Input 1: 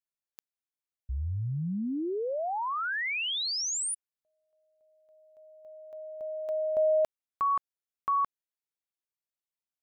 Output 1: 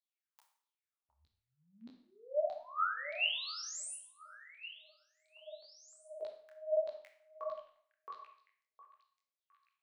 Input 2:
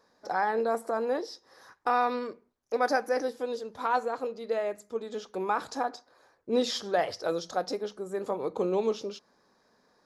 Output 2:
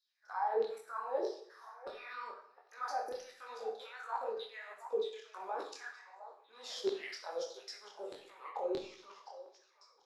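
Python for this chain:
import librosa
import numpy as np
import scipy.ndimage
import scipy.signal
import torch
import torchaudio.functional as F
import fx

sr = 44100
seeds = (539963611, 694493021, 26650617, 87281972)

y = fx.level_steps(x, sr, step_db=20)
y = fx.filter_lfo_highpass(y, sr, shape='saw_down', hz=1.6, low_hz=370.0, high_hz=4100.0, q=7.7)
y = fx.echo_stepped(y, sr, ms=711, hz=790.0, octaves=1.4, feedback_pct=70, wet_db=-10.0)
y = fx.rev_schroeder(y, sr, rt60_s=0.56, comb_ms=28, drr_db=5.0)
y = fx.detune_double(y, sr, cents=50)
y = y * librosa.db_to_amplitude(-1.5)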